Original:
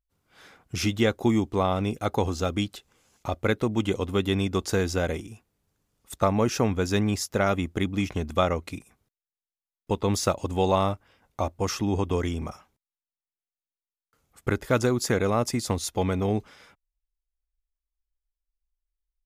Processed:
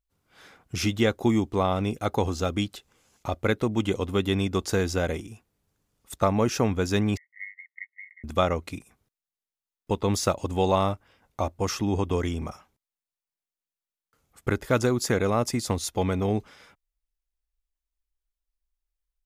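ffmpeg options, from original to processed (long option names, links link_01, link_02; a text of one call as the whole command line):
ffmpeg -i in.wav -filter_complex "[0:a]asettb=1/sr,asplit=3[link_01][link_02][link_03];[link_01]atrim=end=7.174[link_04];[link_02]atrim=start=7.17:end=8.24,asetpts=PTS-STARTPTS,afade=type=in:duration=0.004:curve=qsin,afade=type=out:start_time=1.066:duration=0.004:curve=qsin,asuperpass=centerf=2000:order=12:qfactor=5.4[link_05];[link_03]atrim=start=8.236[link_06];[link_04][link_05]acrossfade=duration=0.004:curve1=hsin:curve2=qsin[link_07];[link_07][link_06]acrossfade=duration=0.004:curve1=qsin:curve2=hsin" out.wav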